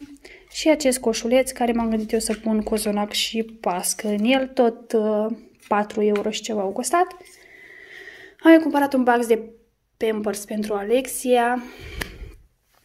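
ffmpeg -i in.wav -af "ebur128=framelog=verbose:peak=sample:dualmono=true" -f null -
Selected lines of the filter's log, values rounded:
Integrated loudness:
  I:         -18.4 LUFS
  Threshold: -29.4 LUFS
Loudness range:
  LRA:         3.8 LU
  Threshold: -39.1 LUFS
  LRA low:   -21.4 LUFS
  LRA high:  -17.6 LUFS
Sample peak:
  Peak:       -1.7 dBFS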